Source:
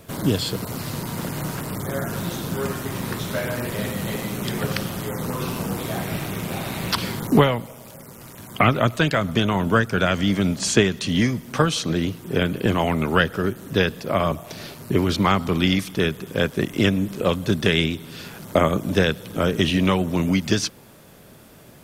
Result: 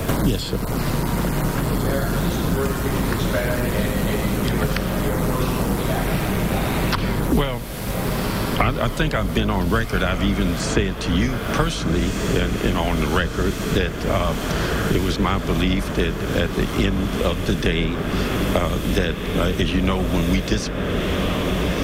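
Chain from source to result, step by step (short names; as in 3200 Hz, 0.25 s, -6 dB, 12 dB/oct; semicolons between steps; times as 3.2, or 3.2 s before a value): octaver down 2 oct, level -1 dB; diffused feedback echo 1.545 s, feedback 77%, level -11 dB; three-band squash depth 100%; gain -1.5 dB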